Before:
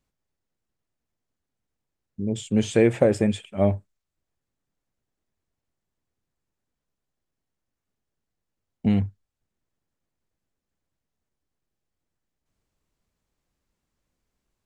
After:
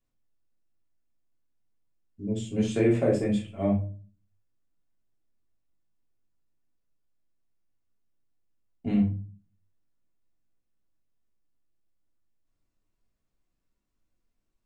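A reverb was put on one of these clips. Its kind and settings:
rectangular room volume 210 cubic metres, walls furnished, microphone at 3.2 metres
level −12 dB

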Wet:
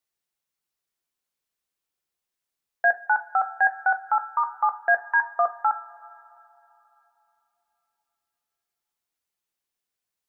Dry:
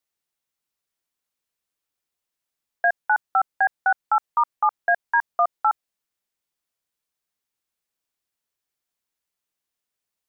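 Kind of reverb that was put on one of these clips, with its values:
coupled-rooms reverb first 0.24 s, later 3.3 s, from −21 dB, DRR 8 dB
level −2 dB

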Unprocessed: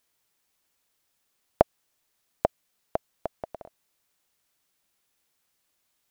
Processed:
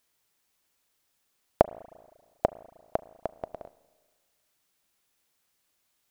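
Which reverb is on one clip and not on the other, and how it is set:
spring reverb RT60 1.5 s, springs 34/39 ms, chirp 55 ms, DRR 18.5 dB

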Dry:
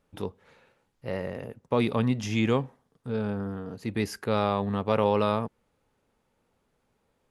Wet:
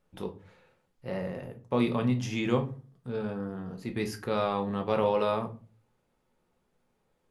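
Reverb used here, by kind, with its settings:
rectangular room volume 190 cubic metres, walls furnished, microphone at 0.95 metres
level −4 dB

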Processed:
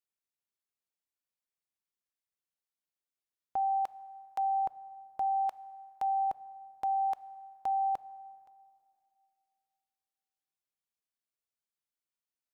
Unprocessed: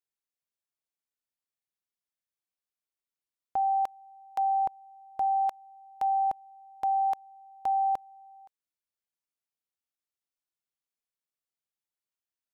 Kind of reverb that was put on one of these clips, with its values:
dense smooth reverb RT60 2.4 s, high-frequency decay 0.65×, DRR 17.5 dB
level −3.5 dB

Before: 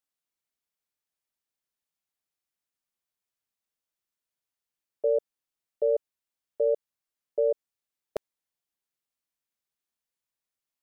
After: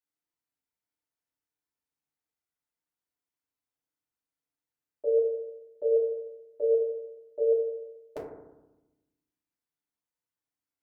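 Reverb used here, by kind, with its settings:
feedback delay network reverb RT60 1 s, low-frequency decay 1.45×, high-frequency decay 0.25×, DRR −7 dB
level −10 dB

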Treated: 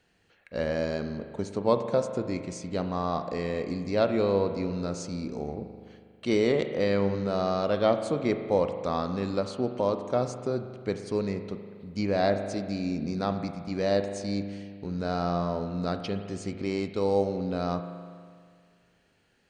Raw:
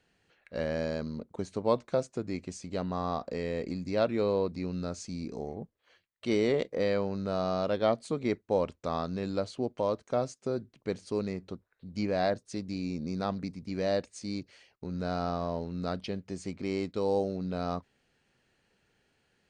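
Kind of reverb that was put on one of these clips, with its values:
spring reverb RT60 2 s, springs 40 ms, chirp 55 ms, DRR 7.5 dB
level +3 dB

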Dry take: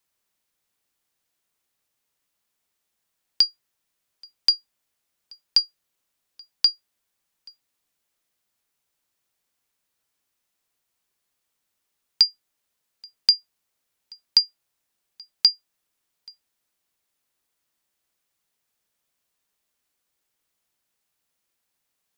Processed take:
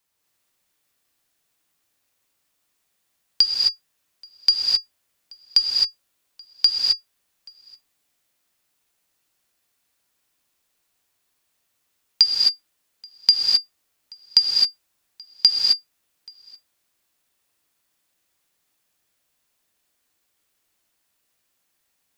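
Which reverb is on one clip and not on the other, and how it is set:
reverb whose tail is shaped and stops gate 290 ms rising, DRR −2.5 dB
level +1.5 dB

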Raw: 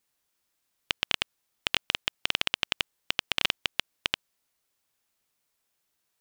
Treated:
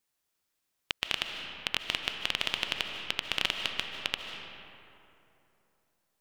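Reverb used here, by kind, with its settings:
comb and all-pass reverb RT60 3 s, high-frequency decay 0.5×, pre-delay 110 ms, DRR 4 dB
level −3.5 dB

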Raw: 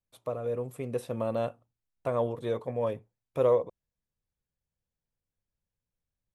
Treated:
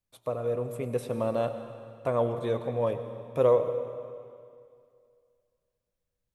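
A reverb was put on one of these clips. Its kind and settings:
comb and all-pass reverb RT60 2.3 s, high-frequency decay 0.95×, pre-delay 65 ms, DRR 9 dB
level +2 dB

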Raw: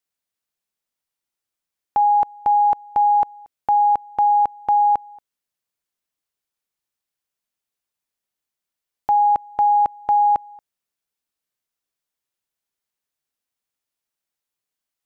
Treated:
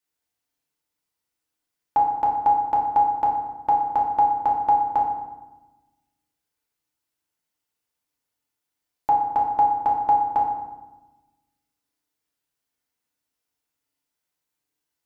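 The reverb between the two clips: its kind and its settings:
feedback delay network reverb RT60 1.1 s, low-frequency decay 1.45×, high-frequency decay 0.6×, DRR −3.5 dB
level −2 dB

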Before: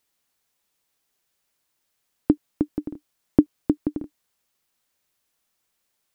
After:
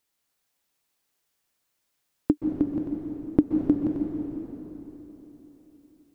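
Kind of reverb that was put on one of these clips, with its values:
dense smooth reverb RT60 3.9 s, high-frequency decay 0.85×, pre-delay 115 ms, DRR 1.5 dB
level −3.5 dB

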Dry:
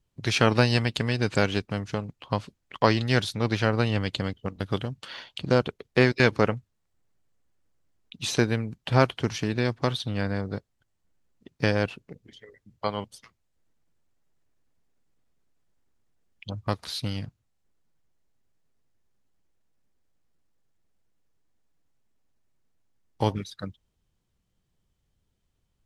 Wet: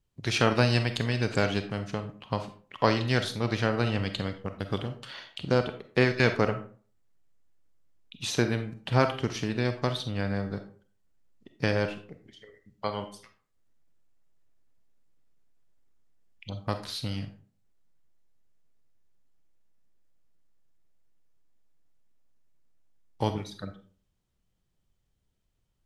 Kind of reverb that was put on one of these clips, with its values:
comb and all-pass reverb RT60 0.44 s, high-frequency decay 0.6×, pre-delay 5 ms, DRR 7.5 dB
level −3 dB

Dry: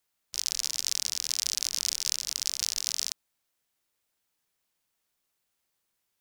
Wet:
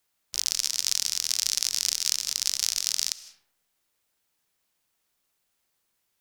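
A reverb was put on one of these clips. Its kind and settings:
comb and all-pass reverb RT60 0.87 s, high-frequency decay 0.45×, pre-delay 115 ms, DRR 15.5 dB
level +3.5 dB

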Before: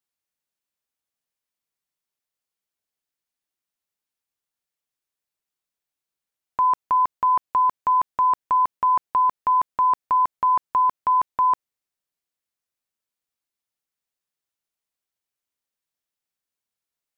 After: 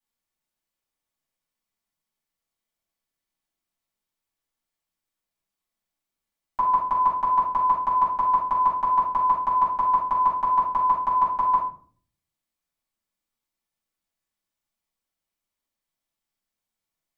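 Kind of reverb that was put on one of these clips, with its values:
rectangular room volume 410 cubic metres, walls furnished, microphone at 7.9 metres
level −9 dB

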